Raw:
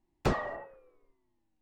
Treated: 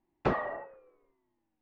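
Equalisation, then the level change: low-pass 2.4 kHz 12 dB/octave; bass shelf 120 Hz -11.5 dB; +2.0 dB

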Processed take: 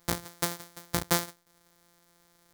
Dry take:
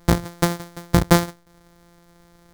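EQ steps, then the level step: tilt EQ +2.5 dB/octave; -10.5 dB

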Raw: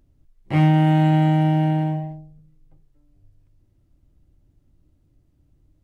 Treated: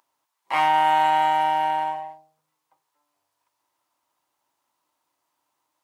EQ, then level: resonant high-pass 960 Hz, resonance Q 5.8; treble shelf 2.9 kHz +7.5 dB; 0.0 dB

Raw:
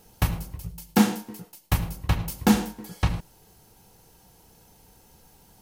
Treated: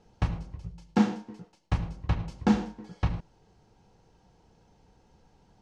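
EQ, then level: low-pass 6.4 kHz 24 dB/octave; treble shelf 2.1 kHz -9 dB; -3.5 dB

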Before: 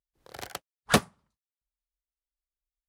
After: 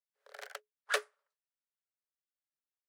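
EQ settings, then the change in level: peaking EQ 12 kHz -5 dB 0.32 oct; dynamic bell 770 Hz, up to -7 dB, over -40 dBFS, Q 1; rippled Chebyshev high-pass 410 Hz, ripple 9 dB; -1.5 dB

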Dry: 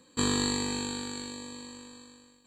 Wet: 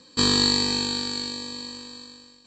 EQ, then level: resonant low-pass 5.3 kHz, resonance Q 12; +4.5 dB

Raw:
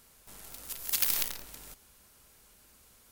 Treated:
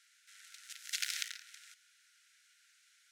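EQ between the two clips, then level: rippled Chebyshev high-pass 1.4 kHz, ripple 3 dB; distance through air 83 m; peaking EQ 4.7 kHz -4.5 dB 0.2 oct; +2.5 dB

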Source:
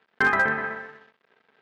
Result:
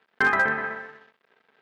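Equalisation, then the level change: bass shelf 210 Hz -3.5 dB; 0.0 dB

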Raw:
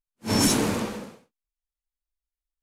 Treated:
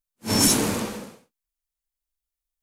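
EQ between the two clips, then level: treble shelf 5.9 kHz +8 dB; 0.0 dB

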